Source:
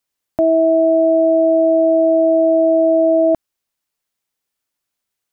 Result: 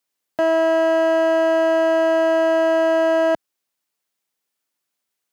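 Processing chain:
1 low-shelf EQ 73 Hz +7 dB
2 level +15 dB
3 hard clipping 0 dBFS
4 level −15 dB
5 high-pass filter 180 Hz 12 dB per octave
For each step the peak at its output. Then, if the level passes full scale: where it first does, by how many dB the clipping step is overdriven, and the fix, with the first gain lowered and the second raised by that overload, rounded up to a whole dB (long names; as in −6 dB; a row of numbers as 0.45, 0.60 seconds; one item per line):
−7.0, +8.0, 0.0, −15.0, −11.0 dBFS
step 2, 8.0 dB
step 2 +7 dB, step 4 −7 dB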